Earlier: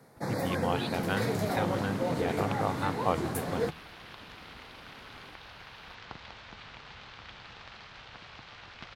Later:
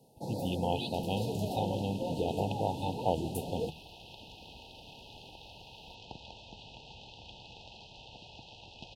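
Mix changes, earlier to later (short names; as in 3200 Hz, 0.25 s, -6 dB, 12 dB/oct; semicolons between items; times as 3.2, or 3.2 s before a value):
first sound -5.0 dB; master: add brick-wall FIR band-stop 960–2500 Hz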